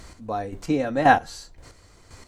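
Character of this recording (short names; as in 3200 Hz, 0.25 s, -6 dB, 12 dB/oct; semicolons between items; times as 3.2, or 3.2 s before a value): a quantiser's noise floor 12-bit, dither none; chopped level 1.9 Hz, depth 60%, duty 25%; MP3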